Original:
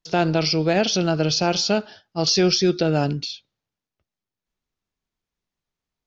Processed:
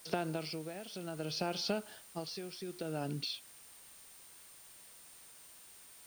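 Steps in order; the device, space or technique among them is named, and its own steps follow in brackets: medium wave at night (band-pass 150–4000 Hz; compression, threshold -28 dBFS, peak gain reduction 13 dB; tremolo 0.6 Hz, depth 73%; whistle 9 kHz -55 dBFS; white noise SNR 16 dB); trim -3.5 dB

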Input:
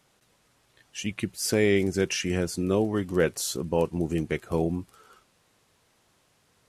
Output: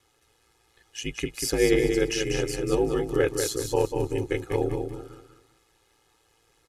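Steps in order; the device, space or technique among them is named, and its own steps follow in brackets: feedback delay 193 ms, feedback 31%, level -6 dB; ring-modulated robot voice (ring modulator 57 Hz; comb 2.4 ms, depth 91%)

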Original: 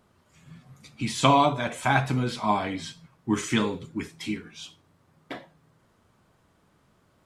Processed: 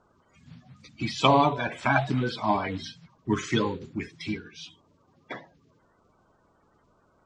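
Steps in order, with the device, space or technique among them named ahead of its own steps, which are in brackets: clip after many re-uploads (low-pass 6.2 kHz 24 dB/octave; coarse spectral quantiser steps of 30 dB); 1.11–2.25 s: band-stop 6.5 kHz, Q 7.7

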